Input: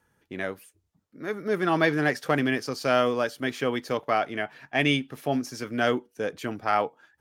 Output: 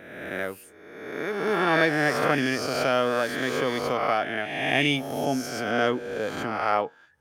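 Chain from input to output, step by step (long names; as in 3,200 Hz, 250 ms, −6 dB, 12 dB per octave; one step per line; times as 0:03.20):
peak hold with a rise ahead of every peak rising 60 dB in 1.33 s
high-shelf EQ 8,100 Hz +3 dB, from 0:05.71 −5 dB
level −2 dB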